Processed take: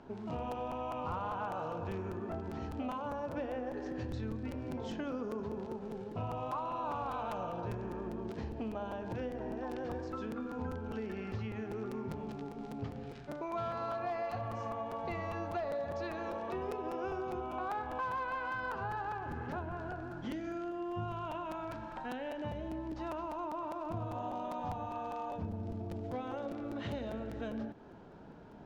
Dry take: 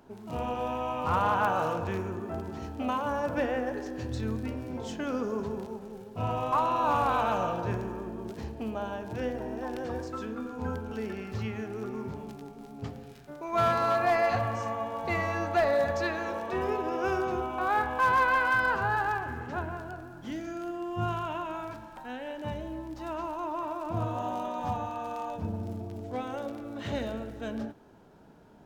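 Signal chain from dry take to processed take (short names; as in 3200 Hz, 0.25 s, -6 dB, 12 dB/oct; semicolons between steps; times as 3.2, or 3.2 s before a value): dynamic EQ 1800 Hz, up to -6 dB, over -45 dBFS, Q 1.9; compressor 4:1, threshold -40 dBFS, peak gain reduction 15 dB; air absorption 130 m; crackling interface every 0.20 s, samples 256, repeat, from 0.51; gain +3 dB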